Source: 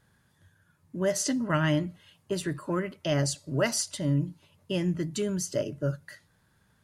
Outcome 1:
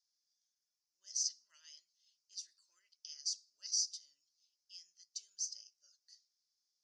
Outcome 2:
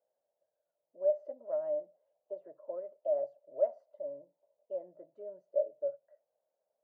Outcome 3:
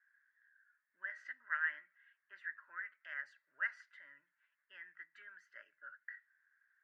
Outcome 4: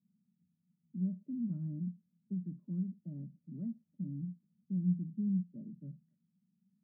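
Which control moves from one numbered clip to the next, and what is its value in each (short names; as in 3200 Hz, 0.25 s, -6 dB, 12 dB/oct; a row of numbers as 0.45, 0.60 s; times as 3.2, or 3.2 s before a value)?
Butterworth band-pass, frequency: 5400, 600, 1700, 200 Hz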